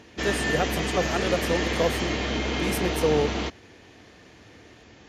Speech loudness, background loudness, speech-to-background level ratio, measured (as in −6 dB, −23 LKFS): −28.5 LKFS, −27.0 LKFS, −1.5 dB